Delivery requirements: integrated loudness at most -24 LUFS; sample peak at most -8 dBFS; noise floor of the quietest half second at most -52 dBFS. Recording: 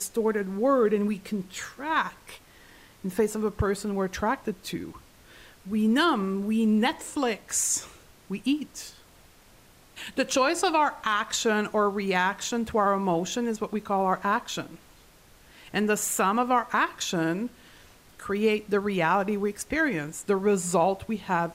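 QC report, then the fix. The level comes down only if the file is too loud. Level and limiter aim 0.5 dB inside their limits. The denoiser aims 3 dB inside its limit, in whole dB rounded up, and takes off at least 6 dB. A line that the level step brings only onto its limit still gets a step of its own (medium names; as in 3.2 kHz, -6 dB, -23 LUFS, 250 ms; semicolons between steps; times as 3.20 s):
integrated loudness -26.5 LUFS: pass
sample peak -11.5 dBFS: pass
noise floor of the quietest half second -55 dBFS: pass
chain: none needed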